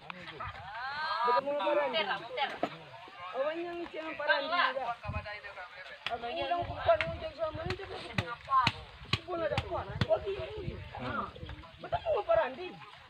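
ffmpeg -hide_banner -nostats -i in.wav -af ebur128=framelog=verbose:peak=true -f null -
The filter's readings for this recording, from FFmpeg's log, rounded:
Integrated loudness:
  I:         -33.6 LUFS
  Threshold: -44.0 LUFS
Loudness range:
  LRA:         2.2 LU
  Threshold: -54.1 LUFS
  LRA low:   -35.3 LUFS
  LRA high:  -33.1 LUFS
True peak:
  Peak:       -9.5 dBFS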